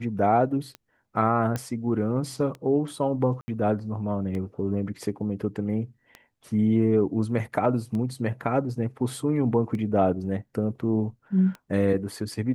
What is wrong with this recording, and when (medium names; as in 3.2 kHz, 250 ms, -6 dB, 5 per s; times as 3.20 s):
tick 33 1/3 rpm -23 dBFS
1.56 s: pop -15 dBFS
3.41–3.48 s: dropout 70 ms